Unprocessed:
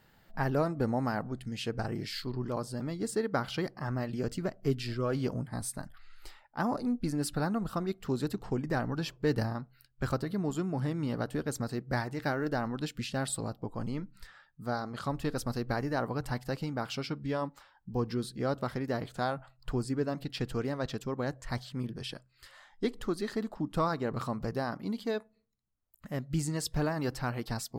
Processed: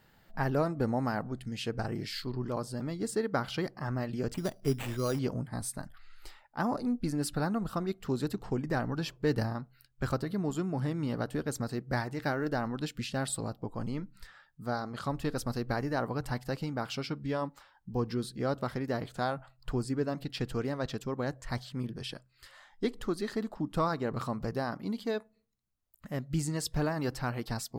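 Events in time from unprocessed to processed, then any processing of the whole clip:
4.34–5.19 s: sample-rate reducer 5.3 kHz

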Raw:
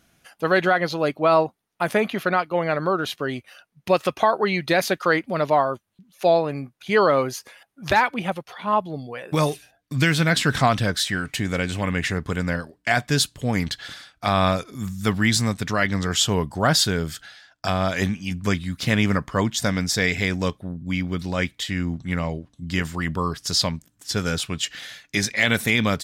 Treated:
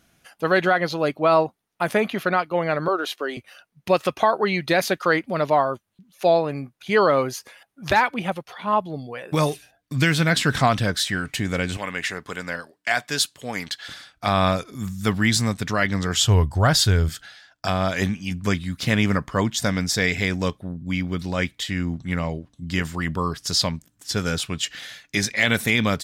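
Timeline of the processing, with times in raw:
2.88–3.37 s: high-pass 300 Hz 24 dB/octave
11.77–13.88 s: high-pass 670 Hz 6 dB/octave
16.16–17.09 s: resonant low shelf 130 Hz +10.5 dB, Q 1.5

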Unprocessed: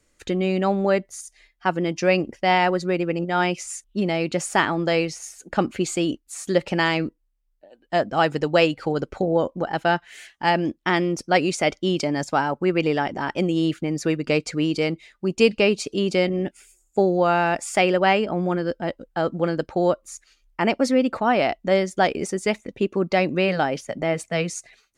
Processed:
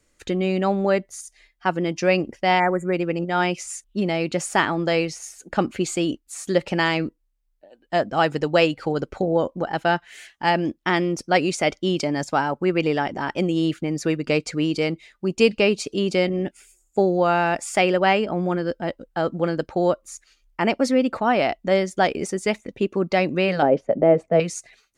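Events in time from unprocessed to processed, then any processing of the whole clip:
2.60–2.93 s: spectral selection erased 2.4–6.7 kHz
23.62–24.40 s: FFT filter 100 Hz 0 dB, 560 Hz +11 dB, 930 Hz +1 dB, 2.2 kHz -8 dB, 9.6 kHz -25 dB

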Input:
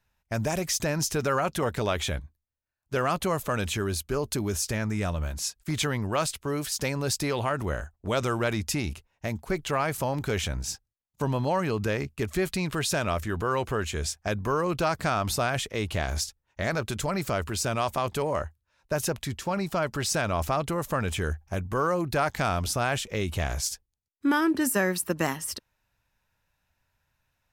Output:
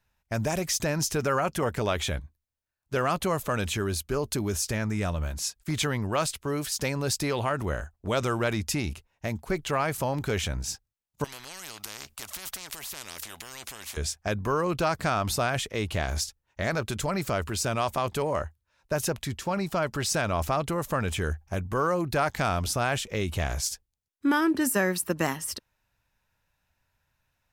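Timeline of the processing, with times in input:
1.17–1.87 s: peaking EQ 3.8 kHz -9 dB 0.21 oct
11.24–13.97 s: spectrum-flattening compressor 10:1

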